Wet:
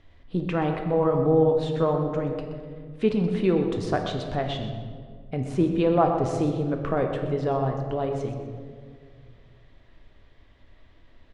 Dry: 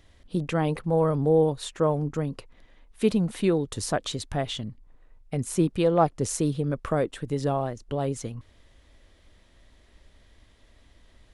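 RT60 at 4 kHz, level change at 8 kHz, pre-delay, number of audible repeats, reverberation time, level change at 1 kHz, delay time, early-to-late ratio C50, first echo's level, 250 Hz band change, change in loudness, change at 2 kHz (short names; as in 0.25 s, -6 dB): 1.1 s, under -10 dB, 3 ms, 1, 2.0 s, +2.0 dB, 0.125 s, 5.0 dB, -12.0 dB, +1.5 dB, +1.0 dB, +1.0 dB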